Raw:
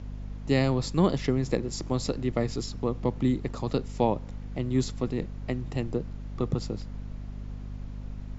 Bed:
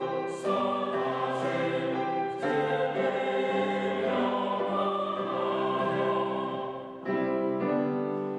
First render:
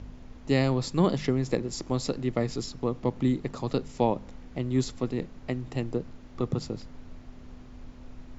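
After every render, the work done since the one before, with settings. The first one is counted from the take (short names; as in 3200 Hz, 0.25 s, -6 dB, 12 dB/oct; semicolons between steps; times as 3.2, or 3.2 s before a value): de-hum 50 Hz, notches 4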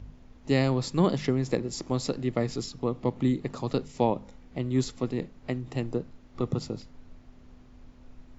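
noise print and reduce 6 dB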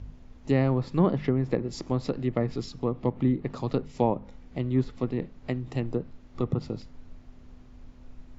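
treble ducked by the level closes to 1900 Hz, closed at -23 dBFS; low shelf 120 Hz +4 dB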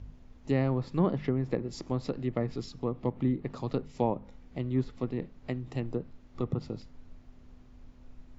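gain -4 dB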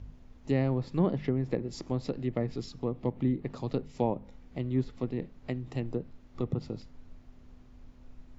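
dynamic EQ 1200 Hz, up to -5 dB, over -50 dBFS, Q 1.9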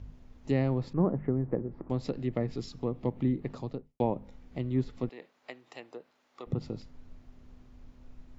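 0.93–1.9 LPF 1500 Hz 24 dB/oct; 3.48–4 studio fade out; 5.09–6.47 HPF 710 Hz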